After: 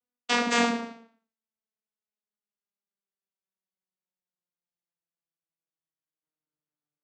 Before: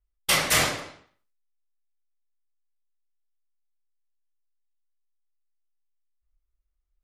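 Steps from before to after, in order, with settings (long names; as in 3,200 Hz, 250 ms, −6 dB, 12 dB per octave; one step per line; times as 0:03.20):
vocoder with a gliding carrier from B3, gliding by −9 semitones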